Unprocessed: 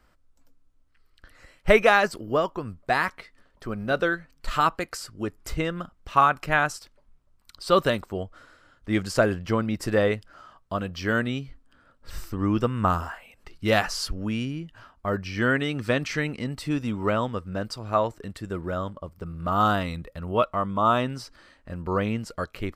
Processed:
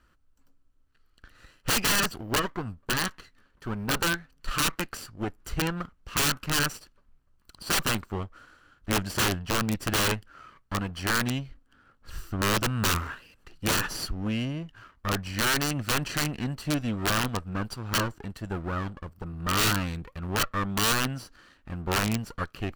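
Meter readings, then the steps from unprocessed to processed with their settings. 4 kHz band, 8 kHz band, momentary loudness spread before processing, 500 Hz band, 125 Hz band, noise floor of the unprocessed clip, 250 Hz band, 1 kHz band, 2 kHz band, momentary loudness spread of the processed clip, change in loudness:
+6.0 dB, +11.0 dB, 14 LU, -10.0 dB, -0.5 dB, -62 dBFS, -3.0 dB, -6.0 dB, -2.0 dB, 12 LU, -2.5 dB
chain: minimum comb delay 0.69 ms; tone controls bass -1 dB, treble -3 dB; wrapped overs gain 18.5 dB

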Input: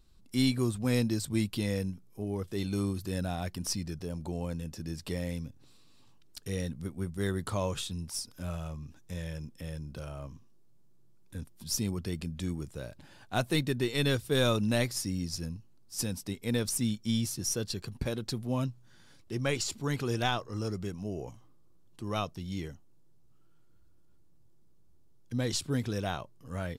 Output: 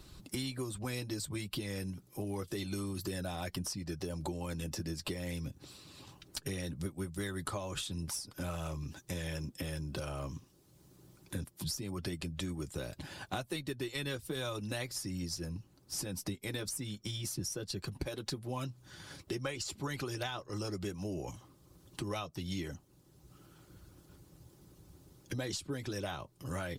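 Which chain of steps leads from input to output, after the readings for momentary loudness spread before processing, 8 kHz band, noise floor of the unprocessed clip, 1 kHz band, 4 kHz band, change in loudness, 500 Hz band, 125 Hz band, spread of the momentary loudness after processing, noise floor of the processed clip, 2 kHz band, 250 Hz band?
13 LU, -4.0 dB, -56 dBFS, -5.0 dB, -4.5 dB, -6.0 dB, -6.0 dB, -6.5 dB, 13 LU, -64 dBFS, -4.5 dB, -7.0 dB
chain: harmonic-percussive split harmonic -10 dB; compressor 12:1, threshold -43 dBFS, peak gain reduction 19 dB; wow and flutter 16 cents; notch comb 230 Hz; three-band squash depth 40%; gain +10 dB

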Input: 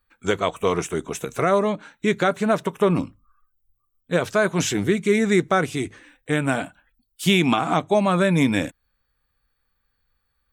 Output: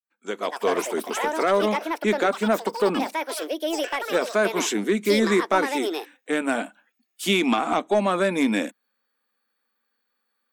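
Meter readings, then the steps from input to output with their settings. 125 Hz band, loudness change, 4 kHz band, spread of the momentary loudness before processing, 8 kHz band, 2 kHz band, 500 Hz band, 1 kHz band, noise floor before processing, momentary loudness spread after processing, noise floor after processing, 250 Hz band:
-11.5 dB, -2.0 dB, 0.0 dB, 9 LU, -0.5 dB, -1.0 dB, -1.0 dB, 0.0 dB, -73 dBFS, 8 LU, -76 dBFS, -2.5 dB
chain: opening faded in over 0.75 s; elliptic high-pass 210 Hz, stop band 40 dB; soft clip -10.5 dBFS, distortion -21 dB; echoes that change speed 0.244 s, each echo +7 st, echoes 2, each echo -6 dB

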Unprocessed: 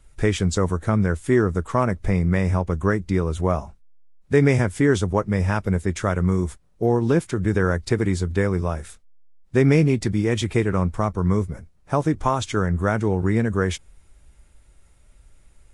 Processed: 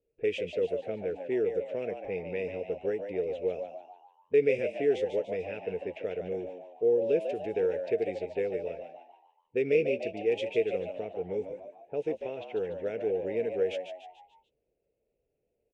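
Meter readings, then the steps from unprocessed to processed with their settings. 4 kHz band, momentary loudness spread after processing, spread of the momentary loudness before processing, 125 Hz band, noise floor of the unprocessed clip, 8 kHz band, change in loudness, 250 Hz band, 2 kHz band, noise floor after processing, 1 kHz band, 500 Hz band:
-11.5 dB, 10 LU, 6 LU, -27.0 dB, -55 dBFS, under -25 dB, -9.5 dB, -17.5 dB, -12.5 dB, -80 dBFS, -17.0 dB, -4.0 dB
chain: double band-pass 1100 Hz, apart 2.5 oct; low-pass opened by the level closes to 720 Hz, open at -27 dBFS; frequency-shifting echo 0.146 s, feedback 45%, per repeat +87 Hz, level -8 dB

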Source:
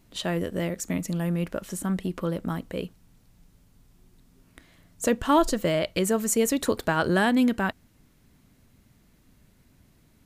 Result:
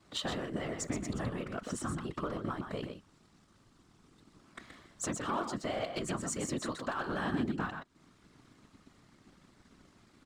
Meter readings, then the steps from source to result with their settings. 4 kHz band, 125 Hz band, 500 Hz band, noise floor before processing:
-7.5 dB, -9.5 dB, -12.0 dB, -61 dBFS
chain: speaker cabinet 110–7900 Hz, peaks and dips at 150 Hz -10 dB, 250 Hz +3 dB, 430 Hz -9 dB, 1200 Hz +8 dB, 2500 Hz -3 dB, 6400 Hz -3 dB; compressor 4:1, threshold -39 dBFS, peak gain reduction 20.5 dB; gate with hold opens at -59 dBFS; sample leveller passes 1; echo 0.125 s -6.5 dB; whisperiser

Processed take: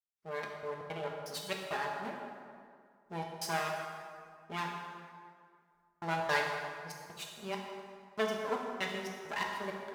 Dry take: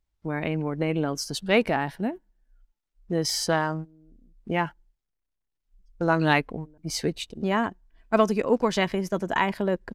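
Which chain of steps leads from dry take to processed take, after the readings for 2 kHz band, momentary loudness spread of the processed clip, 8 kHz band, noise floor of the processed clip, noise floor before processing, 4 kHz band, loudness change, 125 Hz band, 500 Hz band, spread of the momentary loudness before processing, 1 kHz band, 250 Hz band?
-8.0 dB, 14 LU, -12.5 dB, -71 dBFS, -82 dBFS, -10.0 dB, -12.0 dB, -17.0 dB, -12.5 dB, 10 LU, -8.5 dB, -18.5 dB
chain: minimum comb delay 4.9 ms; HPF 840 Hz 6 dB/oct; step gate "..xxx..xx.xx" 167 bpm -60 dB; plate-style reverb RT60 2.1 s, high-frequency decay 0.65×, DRR -0.5 dB; gain -8 dB

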